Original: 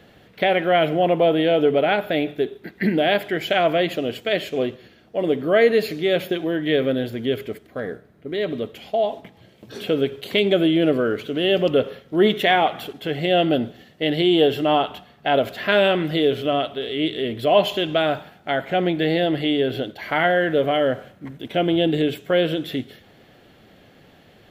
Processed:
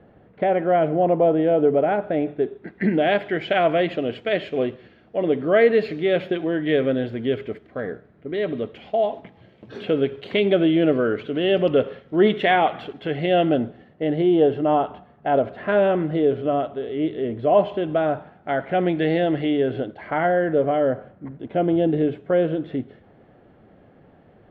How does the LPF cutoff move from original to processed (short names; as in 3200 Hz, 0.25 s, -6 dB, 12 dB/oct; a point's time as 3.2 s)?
2.11 s 1100 Hz
3.17 s 2500 Hz
13.26 s 2500 Hz
14.04 s 1200 Hz
18.16 s 1200 Hz
19 s 2400 Hz
20.32 s 1200 Hz